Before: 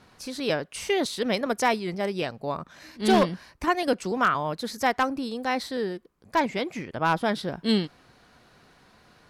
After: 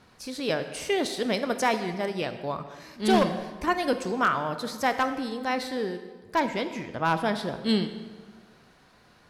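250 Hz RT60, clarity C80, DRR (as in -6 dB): 1.6 s, 11.5 dB, 9.0 dB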